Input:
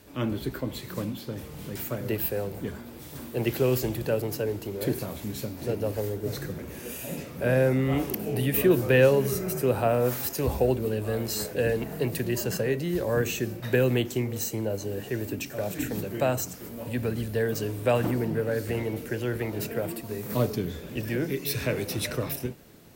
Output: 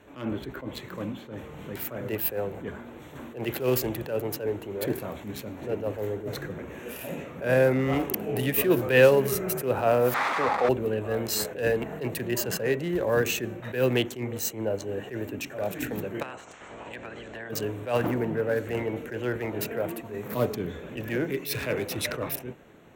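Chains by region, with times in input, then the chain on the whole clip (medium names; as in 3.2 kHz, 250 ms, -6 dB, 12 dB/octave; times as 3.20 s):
10.14–10.69 s: one-bit delta coder 32 kbps, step -24.5 dBFS + cabinet simulation 230–3700 Hz, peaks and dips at 360 Hz -7 dB, 830 Hz +8 dB, 1.2 kHz +10 dB, 2 kHz +5 dB, 3 kHz -10 dB
16.21–17.49 s: spectral peaks clipped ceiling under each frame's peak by 20 dB + compression 8:1, threshold -37 dBFS + brick-wall FIR low-pass 8.4 kHz
whole clip: local Wiener filter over 9 samples; bass shelf 300 Hz -9.5 dB; attacks held to a fixed rise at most 140 dB/s; trim +5 dB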